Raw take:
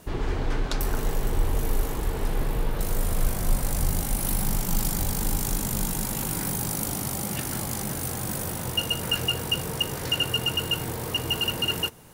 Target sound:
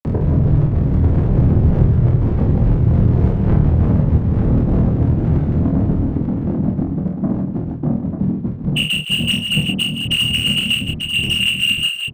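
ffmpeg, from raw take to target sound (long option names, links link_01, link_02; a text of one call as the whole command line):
ffmpeg -i in.wav -filter_complex "[0:a]afftfilt=real='re*gte(hypot(re,im),0.251)':imag='im*gte(hypot(re,im),0.251)':win_size=1024:overlap=0.75,afftfilt=real='hypot(re,im)*cos(2*PI*random(0))':imag='hypot(re,im)*sin(2*PI*random(1))':win_size=512:overlap=0.75,lowshelf=frequency=310:gain=2.5,acompressor=mode=upward:threshold=-35dB:ratio=2.5,adynamicequalizer=threshold=0.00316:dfrequency=900:dqfactor=0.84:tfrequency=900:tqfactor=0.84:attack=5:release=100:ratio=0.375:range=1.5:mode=cutabove:tftype=bell,asplit=2[link_01][link_02];[link_02]highpass=frequency=720:poles=1,volume=38dB,asoftclip=type=tanh:threshold=-12.5dB[link_03];[link_01][link_03]amix=inputs=2:normalize=0,lowpass=frequency=2700:poles=1,volume=-6dB,asplit=2[link_04][link_05];[link_05]adelay=26,volume=-4.5dB[link_06];[link_04][link_06]amix=inputs=2:normalize=0,asplit=2[link_07][link_08];[link_08]aecho=0:1:48|96|139|164|312|892:0.562|0.168|0.126|0.335|0.266|0.473[link_09];[link_07][link_09]amix=inputs=2:normalize=0,volume=4.5dB" out.wav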